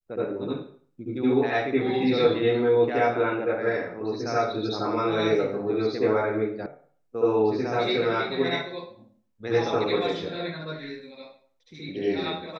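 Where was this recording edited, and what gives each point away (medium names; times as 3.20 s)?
6.66 s: sound stops dead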